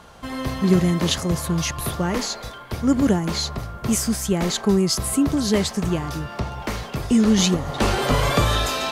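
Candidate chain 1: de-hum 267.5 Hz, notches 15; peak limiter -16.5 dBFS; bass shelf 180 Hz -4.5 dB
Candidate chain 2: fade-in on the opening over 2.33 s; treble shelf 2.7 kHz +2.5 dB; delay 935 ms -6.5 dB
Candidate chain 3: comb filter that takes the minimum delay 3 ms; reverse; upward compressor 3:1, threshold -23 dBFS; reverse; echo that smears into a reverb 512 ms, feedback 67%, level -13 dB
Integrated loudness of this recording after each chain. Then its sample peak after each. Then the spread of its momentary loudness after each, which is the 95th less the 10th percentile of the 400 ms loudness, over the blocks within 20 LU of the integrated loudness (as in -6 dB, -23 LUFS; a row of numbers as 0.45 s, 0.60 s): -27.0 LUFS, -21.0 LUFS, -24.5 LUFS; -16.0 dBFS, -4.5 dBFS, -8.0 dBFS; 6 LU, 10 LU, 7 LU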